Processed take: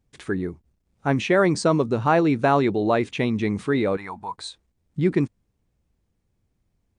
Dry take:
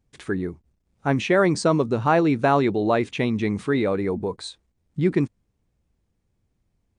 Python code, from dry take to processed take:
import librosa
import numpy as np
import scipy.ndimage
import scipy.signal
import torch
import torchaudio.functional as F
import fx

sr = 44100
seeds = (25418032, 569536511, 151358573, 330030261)

y = fx.low_shelf_res(x, sr, hz=630.0, db=-12.5, q=3.0, at=(3.97, 4.38))